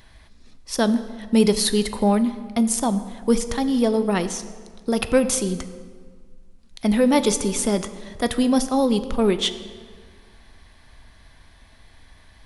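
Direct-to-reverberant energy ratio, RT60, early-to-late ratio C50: 10.5 dB, 1.7 s, 12.5 dB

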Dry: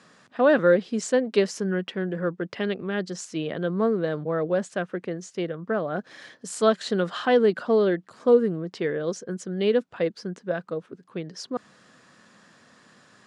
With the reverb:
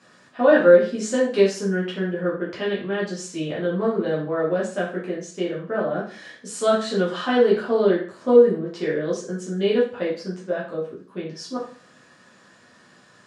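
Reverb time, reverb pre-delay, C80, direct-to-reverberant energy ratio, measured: 0.40 s, 4 ms, 10.5 dB, -6.5 dB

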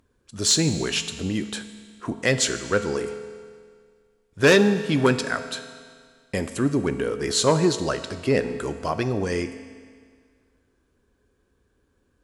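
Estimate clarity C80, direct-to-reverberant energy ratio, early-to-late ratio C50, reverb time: 11.5 dB, 9.0 dB, 11.0 dB, 1.9 s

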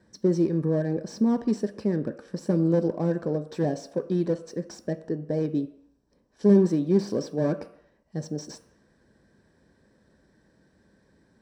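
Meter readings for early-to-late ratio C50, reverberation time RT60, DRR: 15.0 dB, not exponential, 9.0 dB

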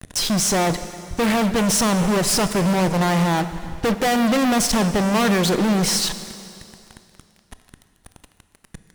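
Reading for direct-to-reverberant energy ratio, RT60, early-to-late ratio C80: 10.5 dB, 2.6 s, 12.0 dB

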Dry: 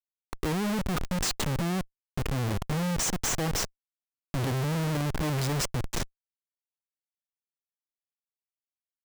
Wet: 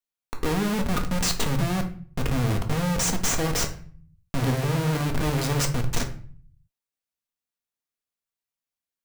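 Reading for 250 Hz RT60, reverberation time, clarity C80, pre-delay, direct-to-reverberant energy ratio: 0.65 s, 0.45 s, 15.5 dB, 4 ms, 3.0 dB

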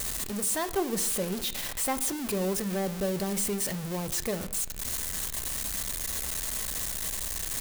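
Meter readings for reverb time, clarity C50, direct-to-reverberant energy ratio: 0.90 s, 15.5 dB, 10.0 dB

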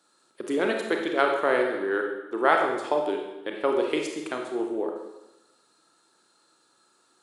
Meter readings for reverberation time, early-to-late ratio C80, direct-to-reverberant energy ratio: 1.0 s, 6.5 dB, 1.5 dB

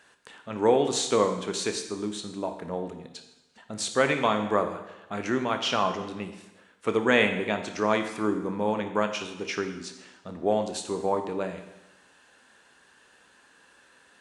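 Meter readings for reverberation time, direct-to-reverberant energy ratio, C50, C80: 0.95 s, 6.5 dB, 8.5 dB, 10.5 dB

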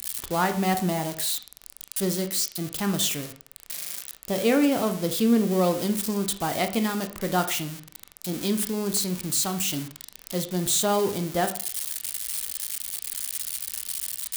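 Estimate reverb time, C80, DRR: 0.50 s, 15.5 dB, 7.0 dB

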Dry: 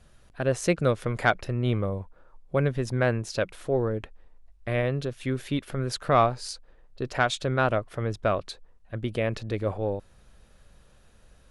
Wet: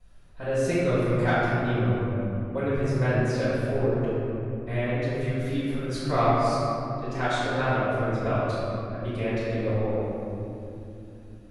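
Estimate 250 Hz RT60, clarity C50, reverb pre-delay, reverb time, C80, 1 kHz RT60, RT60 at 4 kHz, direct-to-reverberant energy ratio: 4.9 s, -5.0 dB, 3 ms, 2.8 s, -2.5 dB, 2.5 s, 1.5 s, -14.0 dB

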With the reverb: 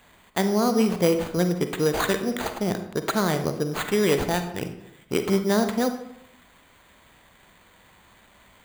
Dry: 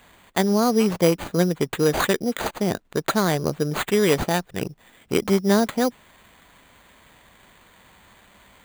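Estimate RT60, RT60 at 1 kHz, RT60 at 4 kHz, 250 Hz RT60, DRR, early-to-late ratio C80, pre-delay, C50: 0.75 s, 0.70 s, 0.50 s, 0.90 s, 7.5 dB, 11.5 dB, 39 ms, 9.0 dB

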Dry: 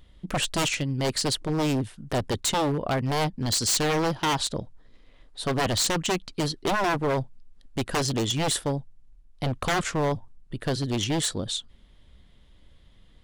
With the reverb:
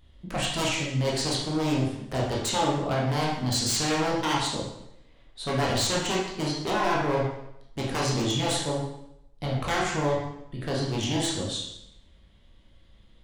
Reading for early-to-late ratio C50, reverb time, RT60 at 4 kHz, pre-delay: 2.0 dB, 0.80 s, 0.75 s, 7 ms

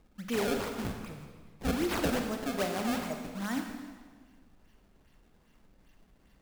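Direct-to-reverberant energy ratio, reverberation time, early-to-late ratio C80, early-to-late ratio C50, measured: 3.5 dB, 1.5 s, 6.0 dB, 4.5 dB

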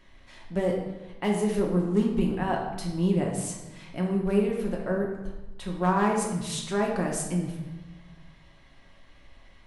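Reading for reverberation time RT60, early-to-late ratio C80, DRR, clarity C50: 1.1 s, 6.5 dB, -1.0 dB, 4.0 dB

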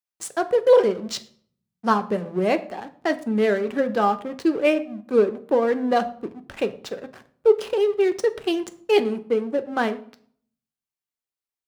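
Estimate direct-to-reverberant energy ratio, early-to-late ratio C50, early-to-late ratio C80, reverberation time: 8.5 dB, 17.0 dB, 20.0 dB, 0.55 s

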